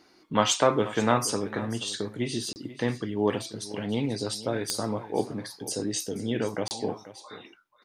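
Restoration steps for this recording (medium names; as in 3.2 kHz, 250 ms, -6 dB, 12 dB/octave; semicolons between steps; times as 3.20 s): de-click; interpolate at 2.53/6.68 s, 29 ms; inverse comb 484 ms -16 dB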